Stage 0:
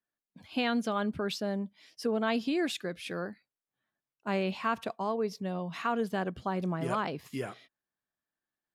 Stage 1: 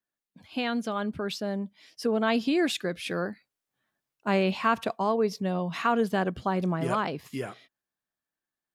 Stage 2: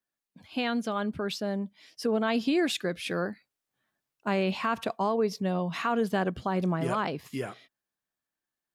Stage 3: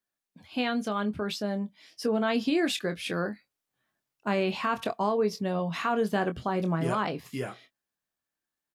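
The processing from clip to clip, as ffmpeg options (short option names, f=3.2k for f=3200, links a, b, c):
-af "dynaudnorm=f=240:g=17:m=6dB"
-af "alimiter=limit=-18dB:level=0:latency=1:release=77"
-filter_complex "[0:a]asplit=2[a][b];[b]adelay=24,volume=-9.5dB[c];[a][c]amix=inputs=2:normalize=0"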